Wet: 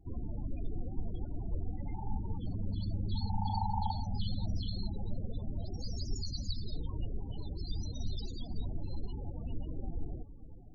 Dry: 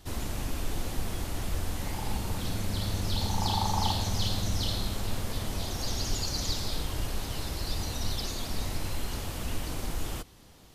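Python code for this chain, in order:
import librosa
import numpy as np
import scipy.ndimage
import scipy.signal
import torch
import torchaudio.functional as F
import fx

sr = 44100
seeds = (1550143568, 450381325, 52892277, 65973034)

y = fx.echo_diffused(x, sr, ms=475, feedback_pct=64, wet_db=-15.5)
y = fx.vibrato(y, sr, rate_hz=9.1, depth_cents=6.8)
y = fx.spec_topn(y, sr, count=16)
y = y * librosa.db_to_amplitude(-4.0)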